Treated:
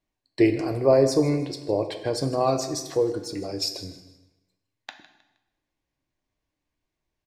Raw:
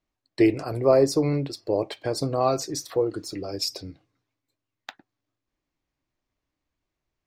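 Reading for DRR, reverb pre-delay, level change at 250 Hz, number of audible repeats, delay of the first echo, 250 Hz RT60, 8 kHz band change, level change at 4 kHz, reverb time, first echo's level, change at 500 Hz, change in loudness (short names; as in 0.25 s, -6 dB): 7.0 dB, 5 ms, +0.5 dB, 2, 0.157 s, 0.95 s, 0.0 dB, +0.5 dB, 1.0 s, -16.0 dB, +0.5 dB, +0.5 dB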